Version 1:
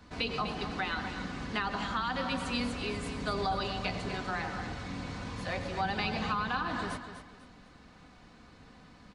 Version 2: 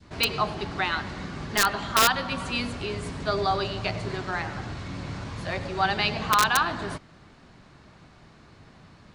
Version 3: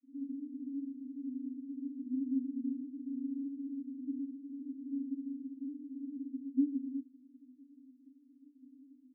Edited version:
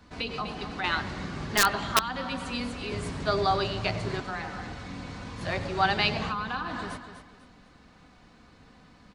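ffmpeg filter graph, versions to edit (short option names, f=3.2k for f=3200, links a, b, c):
-filter_complex "[1:a]asplit=3[a][b][c];[0:a]asplit=4[d][e][f][g];[d]atrim=end=0.842[h];[a]atrim=start=0.838:end=1.992[i];[e]atrim=start=1.988:end=2.922[j];[b]atrim=start=2.918:end=4.202[k];[f]atrim=start=4.198:end=5.412[l];[c]atrim=start=5.408:end=6.292[m];[g]atrim=start=6.288[n];[h][i]acrossfade=d=0.004:c1=hsin:c2=hsin[o];[o][j]acrossfade=d=0.004:c1=hsin:c2=hsin[p];[p][k]acrossfade=d=0.004:c1=hsin:c2=hsin[q];[q][l]acrossfade=d=0.004:c1=hsin:c2=hsin[r];[r][m]acrossfade=d=0.004:c1=hsin:c2=hsin[s];[s][n]acrossfade=d=0.004:c1=hsin:c2=hsin"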